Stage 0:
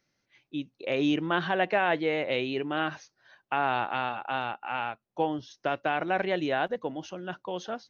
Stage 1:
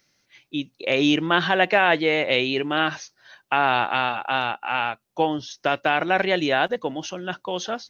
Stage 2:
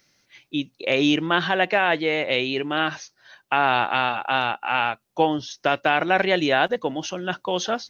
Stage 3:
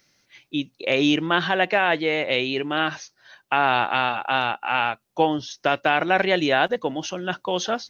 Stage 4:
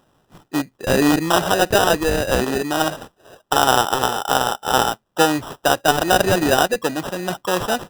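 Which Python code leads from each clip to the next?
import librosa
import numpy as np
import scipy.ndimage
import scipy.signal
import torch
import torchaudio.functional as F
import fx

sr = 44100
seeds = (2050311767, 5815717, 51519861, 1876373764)

y1 = fx.high_shelf(x, sr, hz=2300.0, db=9.0)
y1 = y1 * 10.0 ** (5.5 / 20.0)
y2 = fx.rider(y1, sr, range_db=4, speed_s=2.0)
y3 = y2
y4 = fx.sample_hold(y3, sr, seeds[0], rate_hz=2200.0, jitter_pct=0)
y4 = y4 * 10.0 ** (4.0 / 20.0)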